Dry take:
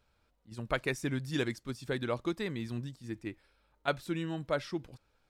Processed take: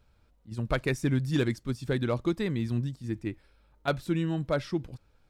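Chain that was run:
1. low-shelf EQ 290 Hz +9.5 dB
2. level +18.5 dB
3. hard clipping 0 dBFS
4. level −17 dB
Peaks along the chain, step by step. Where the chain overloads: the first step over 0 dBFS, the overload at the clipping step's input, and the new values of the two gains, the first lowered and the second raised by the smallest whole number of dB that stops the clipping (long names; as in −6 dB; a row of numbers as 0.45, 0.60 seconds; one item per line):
−13.5, +5.0, 0.0, −17.0 dBFS
step 2, 5.0 dB
step 2 +13.5 dB, step 4 −12 dB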